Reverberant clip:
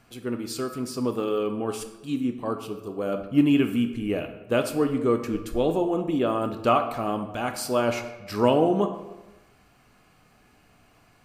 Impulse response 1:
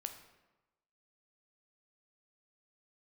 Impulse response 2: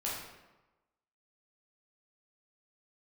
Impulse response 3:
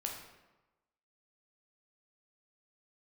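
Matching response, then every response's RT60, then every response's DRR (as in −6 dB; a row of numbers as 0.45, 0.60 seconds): 1; 1.1, 1.1, 1.1 seconds; 6.0, −6.5, 0.0 decibels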